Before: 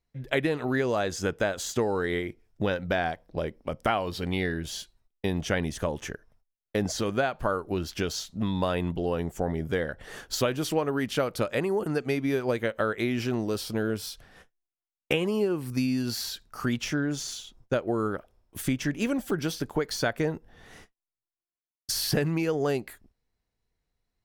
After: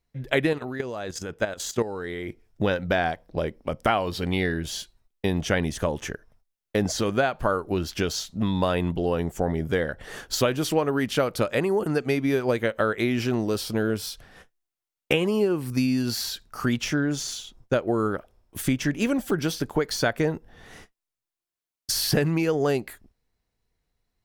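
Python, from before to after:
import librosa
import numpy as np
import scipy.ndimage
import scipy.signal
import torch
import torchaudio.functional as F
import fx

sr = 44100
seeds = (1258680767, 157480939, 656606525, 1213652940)

y = fx.level_steps(x, sr, step_db=12, at=(0.53, 2.28))
y = y * 10.0 ** (3.5 / 20.0)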